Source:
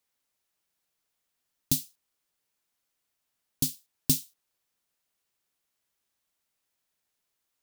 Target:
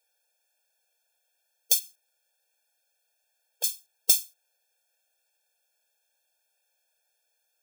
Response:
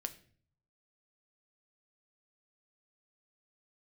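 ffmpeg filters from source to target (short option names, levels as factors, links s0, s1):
-filter_complex "[0:a]asettb=1/sr,asplit=3[s0][s1][s2];[s0]atrim=end=1.794[s3];[s1]atrim=start=1.79:end=3.64,asetpts=PTS-STARTPTS,afade=t=in:d=0.004:c=qsin,afade=t=out:st=1.846:d=0.004:c=qsin,acrossover=split=2900[s4][s5];[s5]acompressor=threshold=0.00708:ratio=4:attack=1:release=60[s6];[s4][s6]amix=inputs=2:normalize=0[s7];[s2]atrim=start=3.636[s8];[s3][s7]acrossfade=d=0.004:c1=hsin:c2=qsin[s9];[s9][s8]acrossfade=d=0.004:c1=qsin:c2=hsin,afftfilt=real='re*eq(mod(floor(b*sr/1024/460),2),1)':imag='im*eq(mod(floor(b*sr/1024/460),2),1)':win_size=1024:overlap=0.75,volume=2.66"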